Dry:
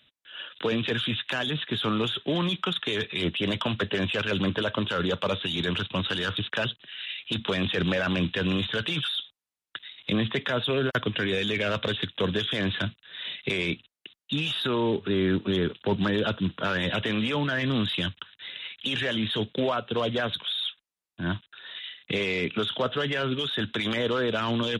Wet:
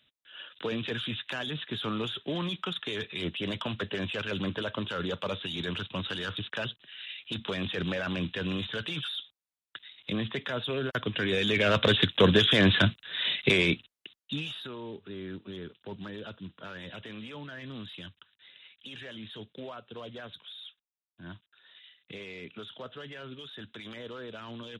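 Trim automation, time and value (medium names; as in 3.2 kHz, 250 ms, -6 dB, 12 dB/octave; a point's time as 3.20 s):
10.88 s -6 dB
11.97 s +6 dB
13.43 s +6 dB
14.38 s -6 dB
14.75 s -15.5 dB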